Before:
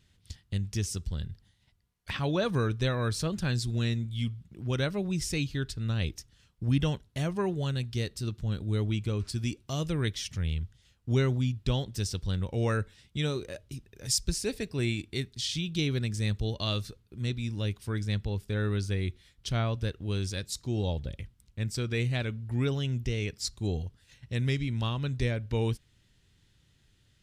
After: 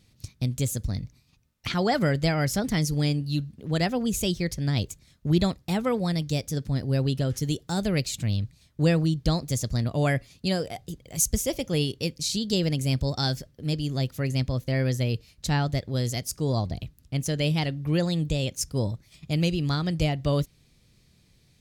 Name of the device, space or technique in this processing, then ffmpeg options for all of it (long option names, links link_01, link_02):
nightcore: -af "asetrate=55566,aresample=44100,volume=4.5dB"